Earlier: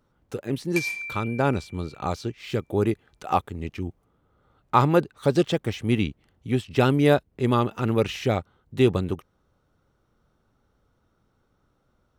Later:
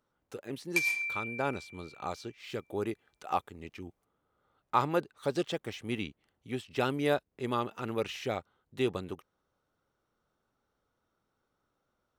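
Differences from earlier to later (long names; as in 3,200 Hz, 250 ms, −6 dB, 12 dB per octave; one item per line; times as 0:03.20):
speech −7.0 dB
master: add low-shelf EQ 230 Hz −12 dB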